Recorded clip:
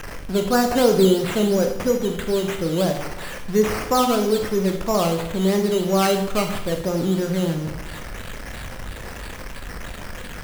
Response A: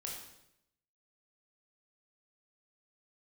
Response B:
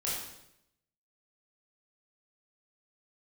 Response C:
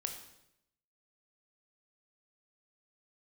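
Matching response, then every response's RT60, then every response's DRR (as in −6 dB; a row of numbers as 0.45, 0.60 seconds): C; 0.80, 0.80, 0.80 seconds; −2.0, −7.0, 4.0 decibels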